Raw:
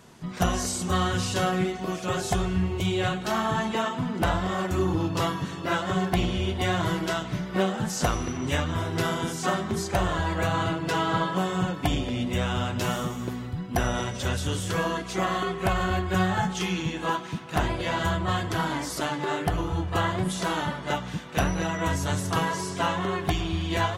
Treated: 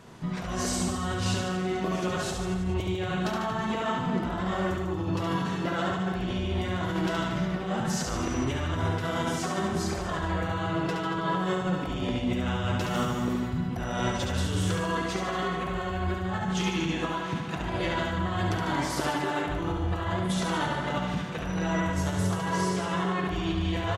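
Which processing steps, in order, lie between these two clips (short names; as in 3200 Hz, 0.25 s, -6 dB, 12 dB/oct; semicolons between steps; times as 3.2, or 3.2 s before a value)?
high shelf 5300 Hz -8.5 dB; negative-ratio compressor -30 dBFS, ratio -1; on a send: reverse bouncing-ball echo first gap 70 ms, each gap 1.1×, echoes 5; on the sum: gain -1 dB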